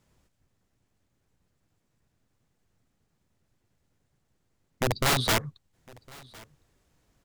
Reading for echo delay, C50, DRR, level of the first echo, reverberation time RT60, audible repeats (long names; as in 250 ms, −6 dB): 1,058 ms, no reverb audible, no reverb audible, −24.0 dB, no reverb audible, 1